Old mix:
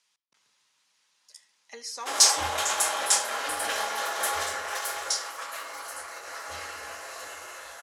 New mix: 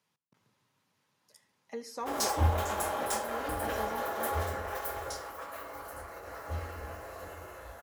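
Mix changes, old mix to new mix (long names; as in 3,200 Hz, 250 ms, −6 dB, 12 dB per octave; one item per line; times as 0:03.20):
background −4.0 dB
master: remove meter weighting curve ITU-R 468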